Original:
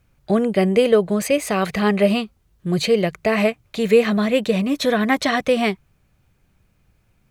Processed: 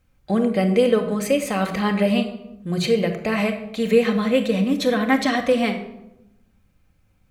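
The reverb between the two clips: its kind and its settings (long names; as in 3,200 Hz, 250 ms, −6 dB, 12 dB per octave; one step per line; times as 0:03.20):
rectangular room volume 2,900 cubic metres, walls furnished, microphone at 2.1 metres
level −4 dB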